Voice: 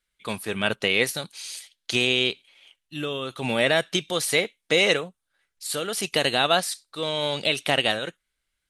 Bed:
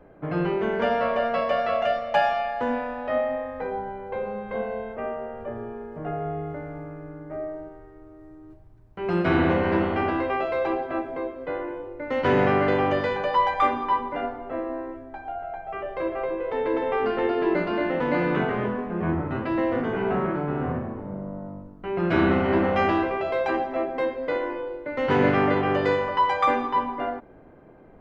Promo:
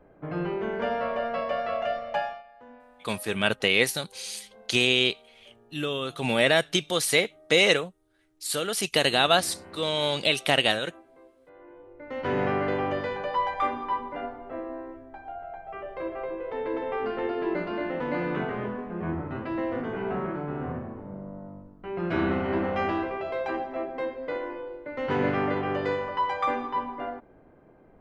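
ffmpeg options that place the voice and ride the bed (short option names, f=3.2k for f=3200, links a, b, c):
-filter_complex "[0:a]adelay=2800,volume=0dB[a];[1:a]volume=13dB,afade=t=out:st=2.09:d=0.34:silence=0.11885,afade=t=in:st=11.53:d=0.95:silence=0.125893[b];[a][b]amix=inputs=2:normalize=0"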